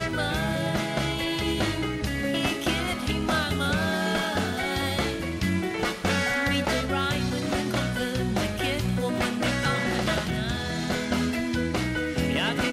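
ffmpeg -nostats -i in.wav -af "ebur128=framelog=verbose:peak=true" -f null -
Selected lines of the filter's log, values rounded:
Integrated loudness:
  I:         -26.4 LUFS
  Threshold: -36.4 LUFS
Loudness range:
  LRA:         0.6 LU
  Threshold: -46.3 LUFS
  LRA low:   -26.6 LUFS
  LRA high:  -26.0 LUFS
True peak:
  Peak:      -14.9 dBFS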